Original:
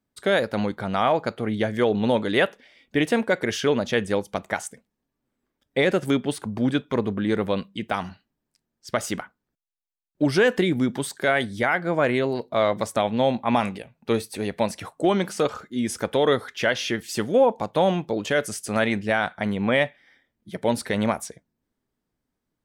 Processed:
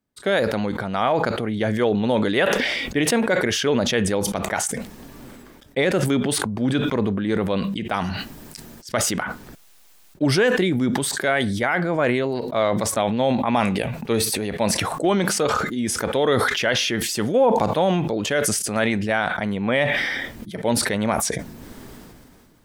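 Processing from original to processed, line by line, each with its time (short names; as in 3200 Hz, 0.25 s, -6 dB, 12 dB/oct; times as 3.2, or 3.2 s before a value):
8.03–9 high shelf 6300 Hz +5 dB
whole clip: sustainer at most 25 dB/s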